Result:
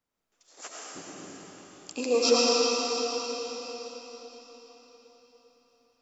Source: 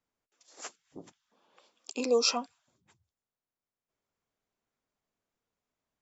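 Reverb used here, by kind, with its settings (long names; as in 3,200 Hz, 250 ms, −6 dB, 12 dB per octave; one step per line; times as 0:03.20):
comb and all-pass reverb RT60 4.7 s, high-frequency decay 0.95×, pre-delay 55 ms, DRR −6.5 dB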